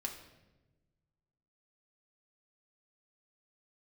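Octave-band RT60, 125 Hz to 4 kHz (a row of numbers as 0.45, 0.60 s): 2.0, 1.6, 1.3, 0.90, 0.90, 0.80 s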